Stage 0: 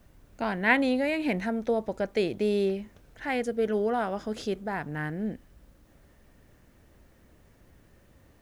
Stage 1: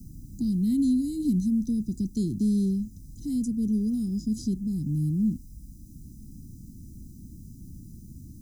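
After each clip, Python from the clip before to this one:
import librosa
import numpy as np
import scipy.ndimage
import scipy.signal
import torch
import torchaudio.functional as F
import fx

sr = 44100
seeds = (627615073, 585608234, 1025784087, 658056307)

y = scipy.signal.sosfilt(scipy.signal.cheby2(4, 50, [600.0, 2700.0], 'bandstop', fs=sr, output='sos'), x)
y = y + 0.62 * np.pad(y, (int(1.0 * sr / 1000.0), 0))[:len(y)]
y = fx.band_squash(y, sr, depth_pct=40)
y = y * librosa.db_to_amplitude(6.5)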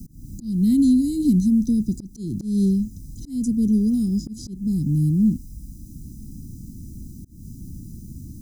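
y = fx.auto_swell(x, sr, attack_ms=229.0)
y = y * librosa.db_to_amplitude(7.0)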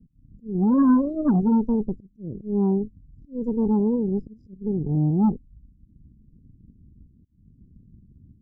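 y = scipy.signal.savgol_filter(x, 25, 4, mode='constant')
y = fx.cheby_harmonics(y, sr, harmonics=(6,), levels_db=(-10,), full_scale_db=-9.5)
y = fx.spectral_expand(y, sr, expansion=1.5)
y = y * librosa.db_to_amplitude(-2.0)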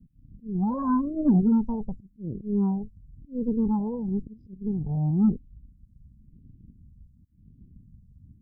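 y = fx.phaser_stages(x, sr, stages=4, low_hz=320.0, high_hz=1300.0, hz=0.96, feedback_pct=20)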